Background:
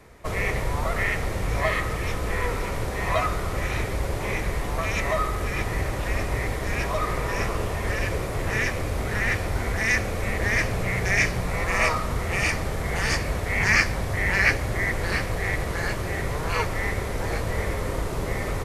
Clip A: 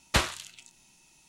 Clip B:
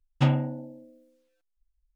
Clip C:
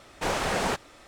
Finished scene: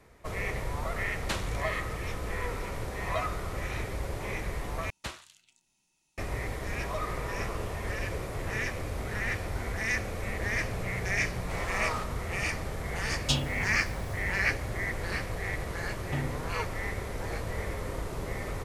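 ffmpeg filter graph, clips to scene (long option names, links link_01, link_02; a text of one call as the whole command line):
ffmpeg -i bed.wav -i cue0.wav -i cue1.wav -i cue2.wav -filter_complex "[1:a]asplit=2[link_01][link_02];[2:a]asplit=2[link_03][link_04];[0:a]volume=-7.5dB[link_05];[link_03]aexciter=amount=9.3:drive=9.8:freq=3100[link_06];[link_05]asplit=2[link_07][link_08];[link_07]atrim=end=4.904[link_09];[link_02]atrim=end=1.28,asetpts=PTS-STARTPTS,volume=-14.5dB[link_10];[link_08]atrim=start=6.176[link_11];[link_01]atrim=end=1.28,asetpts=PTS-STARTPTS,volume=-9dB,afade=type=in:duration=0.004:curve=hsin,afade=type=out:start_time=1.276:duration=0.004:curve=hsin,adelay=1150[link_12];[3:a]atrim=end=1.07,asetpts=PTS-STARTPTS,volume=-13.5dB,afade=type=in:duration=0.004:curve=hsin,afade=type=out:start_time=1.066:duration=0.004:curve=hsin,adelay=11280[link_13];[link_06]atrim=end=1.95,asetpts=PTS-STARTPTS,volume=-9.5dB,afade=type=in:duration=0.004:curve=hsin,afade=type=out:start_time=1.946:duration=0.004:curve=hsin,adelay=13080[link_14];[link_04]atrim=end=1.95,asetpts=PTS-STARTPTS,volume=-11.5dB,afade=type=in:duration=0.004:curve=hsin,afade=type=out:start_time=1.946:duration=0.004:curve=hsin,adelay=15910[link_15];[link_09][link_10]acrossfade=duration=0.004:curve1=hsin:curve2=hsin[link_16];[link_16][link_11]acrossfade=duration=0.004:curve1=hsin:curve2=hsin[link_17];[link_17][link_12][link_13][link_14][link_15]amix=inputs=5:normalize=0" out.wav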